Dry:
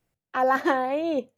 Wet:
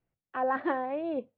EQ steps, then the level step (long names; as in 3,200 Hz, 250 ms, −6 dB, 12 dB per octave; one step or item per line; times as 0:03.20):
low-pass filter 8,600 Hz
high-frequency loss of the air 340 metres
parametric band 5,800 Hz −10 dB 0.67 octaves
−5.5 dB